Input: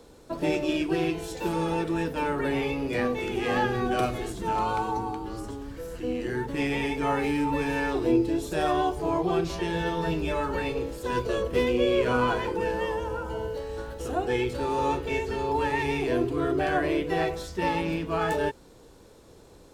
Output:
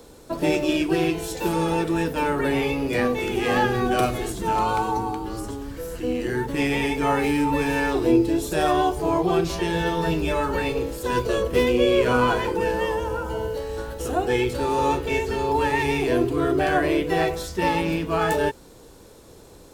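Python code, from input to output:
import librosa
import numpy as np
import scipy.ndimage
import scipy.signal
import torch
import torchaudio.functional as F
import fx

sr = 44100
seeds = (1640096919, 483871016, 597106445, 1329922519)

y = fx.high_shelf(x, sr, hz=9100.0, db=9.0)
y = F.gain(torch.from_numpy(y), 4.5).numpy()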